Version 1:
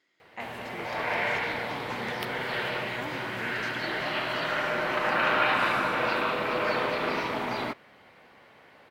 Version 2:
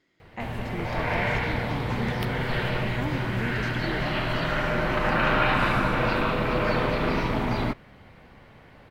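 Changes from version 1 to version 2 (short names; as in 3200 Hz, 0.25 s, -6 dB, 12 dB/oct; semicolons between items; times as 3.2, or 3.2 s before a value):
background: add bell 390 Hz -3 dB 1.9 oct; master: remove HPF 770 Hz 6 dB/oct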